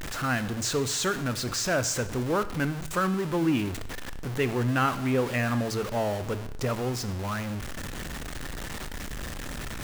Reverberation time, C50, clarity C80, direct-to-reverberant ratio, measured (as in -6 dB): 0.85 s, 14.5 dB, 16.5 dB, 12.0 dB